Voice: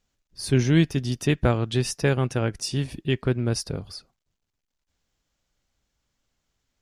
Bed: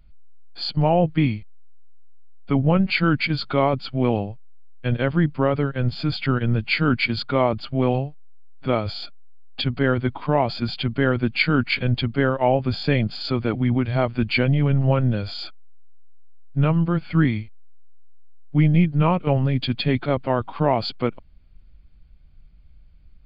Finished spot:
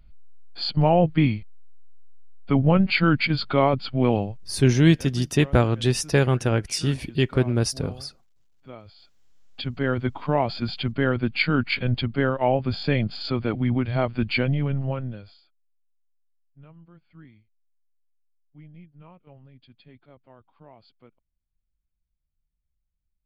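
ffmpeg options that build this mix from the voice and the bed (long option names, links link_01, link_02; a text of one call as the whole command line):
ffmpeg -i stem1.wav -i stem2.wav -filter_complex "[0:a]adelay=4100,volume=2.5dB[link_01];[1:a]volume=18dB,afade=type=out:start_time=4.48:duration=0.31:silence=0.0944061,afade=type=in:start_time=9.12:duration=0.96:silence=0.125893,afade=type=out:start_time=14.31:duration=1.11:silence=0.0421697[link_02];[link_01][link_02]amix=inputs=2:normalize=0" out.wav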